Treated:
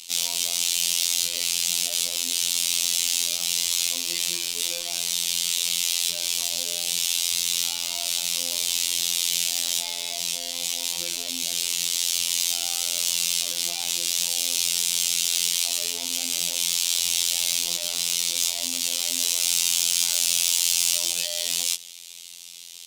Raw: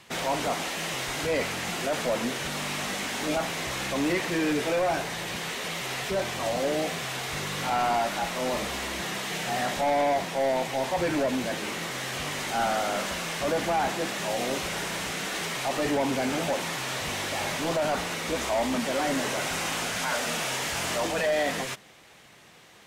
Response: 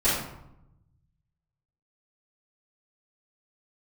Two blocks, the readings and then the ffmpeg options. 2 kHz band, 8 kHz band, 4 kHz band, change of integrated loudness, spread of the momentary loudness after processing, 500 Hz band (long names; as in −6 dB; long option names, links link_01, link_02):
−4.0 dB, +14.0 dB, +10.0 dB, +6.0 dB, 6 LU, −17.0 dB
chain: -af "asoftclip=type=tanh:threshold=-30dB,afftfilt=real='hypot(re,im)*cos(PI*b)':imag='0':win_size=2048:overlap=0.75,aexciter=amount=12.5:drive=8.5:freq=2700,volume=-7.5dB"